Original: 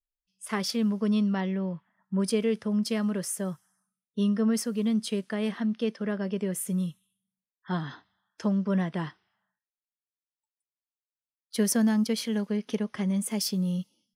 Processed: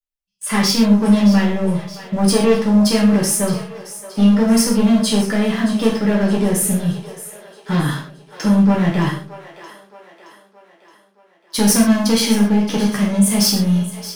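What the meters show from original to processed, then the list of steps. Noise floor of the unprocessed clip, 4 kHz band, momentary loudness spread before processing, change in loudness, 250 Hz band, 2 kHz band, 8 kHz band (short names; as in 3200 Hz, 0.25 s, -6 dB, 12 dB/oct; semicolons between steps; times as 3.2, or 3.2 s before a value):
under -85 dBFS, +15.0 dB, 9 LU, +12.5 dB, +12.5 dB, +13.5 dB, +14.5 dB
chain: sample leveller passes 3; split-band echo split 370 Hz, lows 95 ms, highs 0.621 s, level -14 dB; non-linear reverb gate 0.16 s falling, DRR -4 dB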